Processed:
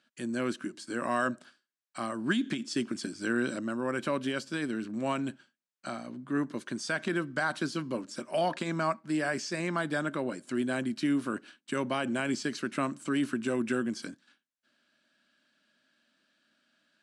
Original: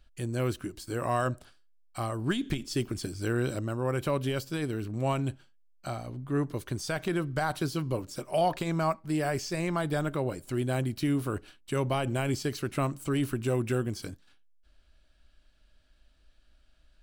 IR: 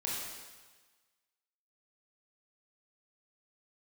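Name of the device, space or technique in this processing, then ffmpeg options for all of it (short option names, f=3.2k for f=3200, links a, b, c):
television speaker: -af "highpass=f=190:w=0.5412,highpass=f=190:w=1.3066,equalizer=f=230:t=q:w=4:g=6,equalizer=f=440:t=q:w=4:g=-6,equalizer=f=770:t=q:w=4:g=-5,equalizer=f=1.6k:t=q:w=4:g=6,lowpass=f=9k:w=0.5412,lowpass=f=9k:w=1.3066"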